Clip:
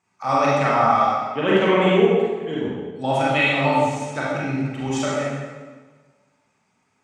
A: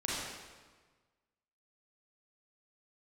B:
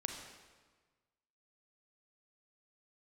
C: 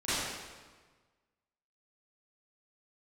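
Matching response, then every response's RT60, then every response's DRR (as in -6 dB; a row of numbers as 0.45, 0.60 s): A; 1.4, 1.4, 1.4 s; -7.0, 3.0, -16.5 dB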